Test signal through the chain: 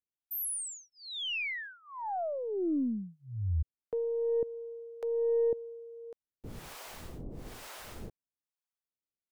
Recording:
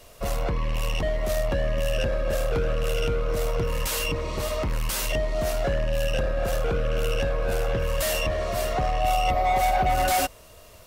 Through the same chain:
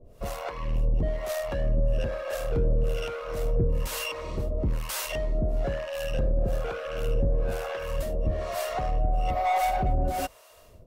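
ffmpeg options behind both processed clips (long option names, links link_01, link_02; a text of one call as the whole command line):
ffmpeg -i in.wav -filter_complex "[0:a]tiltshelf=frequency=970:gain=3.5,acrossover=split=550[link_01][link_02];[link_01]aeval=exprs='val(0)*(1-1/2+1/2*cos(2*PI*1.1*n/s))':channel_layout=same[link_03];[link_02]aeval=exprs='val(0)*(1-1/2-1/2*cos(2*PI*1.1*n/s))':channel_layout=same[link_04];[link_03][link_04]amix=inputs=2:normalize=0,aeval=exprs='0.188*(cos(1*acos(clip(val(0)/0.188,-1,1)))-cos(1*PI/2))+0.00211*(cos(8*acos(clip(val(0)/0.188,-1,1)))-cos(8*PI/2))':channel_layout=same" out.wav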